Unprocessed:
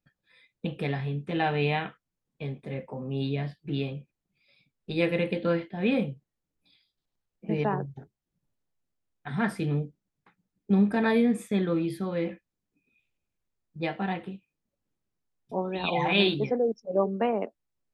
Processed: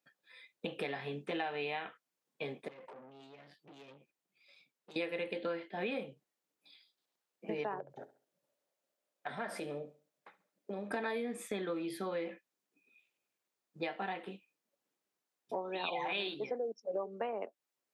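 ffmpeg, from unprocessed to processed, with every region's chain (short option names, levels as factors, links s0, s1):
-filter_complex "[0:a]asettb=1/sr,asplit=3[s0][s1][s2];[s0]atrim=end=2.684[s3];[s1]atrim=start=2.68:end=4.96,asetpts=PTS-STARTPTS,afade=t=in:d=0.004:c=qsin,afade=t=out:st=2.276:d=0.004:c=qsin,acompressor=threshold=0.00891:ratio=16:attack=3.2:release=140:knee=1:detection=peak,aeval=exprs='(tanh(251*val(0)+0.5)-tanh(0.5))/251':c=same[s4];[s2]atrim=start=4.956[s5];[s3][s4]acrossfade=d=0.004:c1=hsin:c2=qsin[s6];[s6][s5]acrossfade=d=0.004:c1=qsin:c2=hsin,asettb=1/sr,asplit=3[s7][s8][s9];[s7]atrim=end=7.804[s10];[s8]atrim=start=7.8:end=10.91,asetpts=PTS-STARTPTS,afade=t=in:d=0.004:c=qsin,afade=t=out:st=3.106:d=0.004:c=qsin,acompressor=threshold=0.0112:ratio=2.5:attack=3.2:release=140:knee=1:detection=peak,equalizer=f=580:t=o:w=0.37:g=13,aecho=1:1:69|138|207:0.141|0.0509|0.0183,atrim=end_sample=137151[s11];[s9]atrim=start=10.906[s12];[s10][s11]acrossfade=d=0.004:c1=hsin:c2=qsin[s13];[s13][s12]acrossfade=d=0.004:c1=qsin:c2=hsin,highpass=400,acompressor=threshold=0.0126:ratio=6,volume=1.41"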